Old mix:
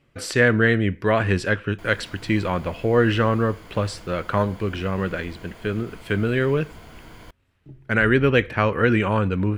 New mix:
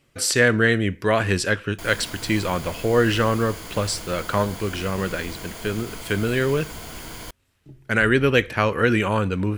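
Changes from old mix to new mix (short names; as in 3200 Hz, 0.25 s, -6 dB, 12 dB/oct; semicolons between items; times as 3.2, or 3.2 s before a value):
background +6.5 dB; master: add tone controls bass -2 dB, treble +12 dB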